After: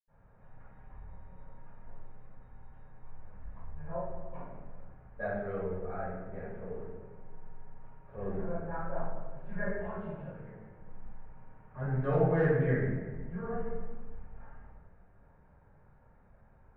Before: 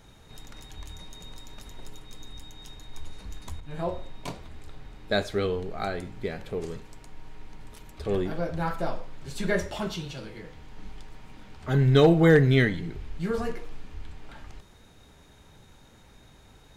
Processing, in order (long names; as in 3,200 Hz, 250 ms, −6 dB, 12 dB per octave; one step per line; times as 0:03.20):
low-pass filter 1,600 Hz 24 dB per octave
parametric band 310 Hz −9.5 dB 1 octave
hard clipping −13.5 dBFS, distortion −32 dB
convolution reverb RT60 1.4 s, pre-delay 76 ms, DRR −60 dB
level −8.5 dB